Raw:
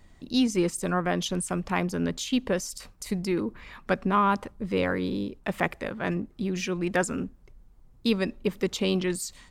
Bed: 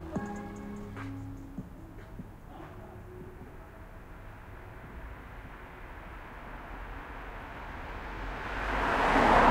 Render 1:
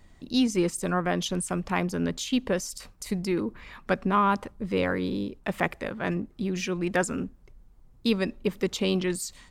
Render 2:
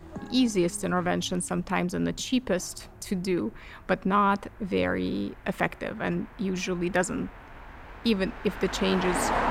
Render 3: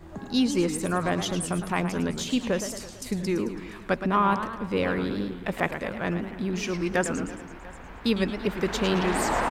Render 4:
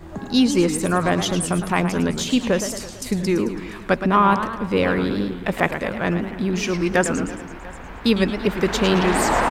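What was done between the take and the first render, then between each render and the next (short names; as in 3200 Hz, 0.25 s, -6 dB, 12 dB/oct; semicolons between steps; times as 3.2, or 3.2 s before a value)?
nothing audible
add bed -4 dB
echo 0.694 s -22 dB; warbling echo 0.111 s, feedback 56%, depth 200 cents, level -9.5 dB
gain +6.5 dB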